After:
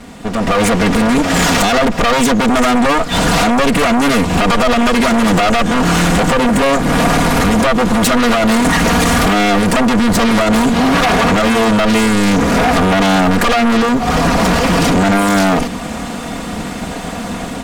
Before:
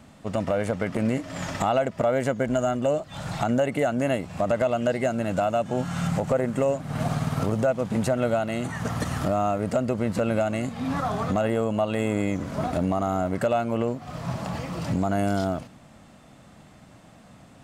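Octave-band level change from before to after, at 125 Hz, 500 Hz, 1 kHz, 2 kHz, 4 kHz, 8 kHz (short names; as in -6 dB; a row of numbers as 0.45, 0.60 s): +10.0, +9.5, +15.5, +19.5, +23.0, +20.5 dB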